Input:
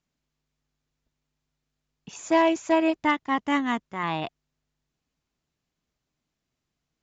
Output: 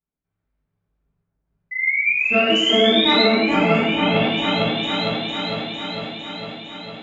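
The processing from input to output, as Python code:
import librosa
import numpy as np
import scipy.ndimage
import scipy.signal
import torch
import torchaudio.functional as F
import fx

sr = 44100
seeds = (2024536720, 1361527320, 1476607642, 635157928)

p1 = fx.pitch_trill(x, sr, semitones=-6.5, every_ms=208)
p2 = fx.env_lowpass(p1, sr, base_hz=1600.0, full_db=-20.5)
p3 = fx.step_gate(p2, sr, bpm=62, pattern='.xxxx.xx', floor_db=-12.0, edge_ms=4.5)
p4 = fx.spec_paint(p3, sr, seeds[0], shape='rise', start_s=1.71, length_s=1.53, low_hz=2000.0, high_hz=4100.0, level_db=-25.0)
p5 = p4 + fx.echo_opening(p4, sr, ms=454, hz=750, octaves=1, feedback_pct=70, wet_db=0, dry=0)
p6 = fx.rev_gated(p5, sr, seeds[1], gate_ms=320, shape='falling', drr_db=-6.5)
y = p6 * 10.0 ** (-2.5 / 20.0)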